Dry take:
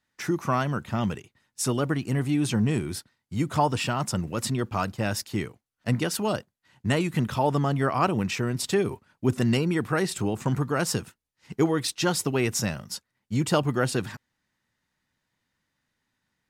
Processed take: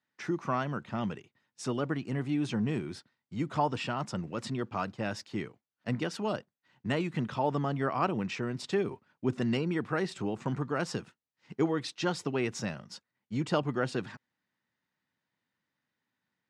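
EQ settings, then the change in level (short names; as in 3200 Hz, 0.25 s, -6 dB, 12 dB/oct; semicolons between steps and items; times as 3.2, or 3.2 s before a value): HPF 140 Hz 12 dB/oct; air absorption 110 m; -5.0 dB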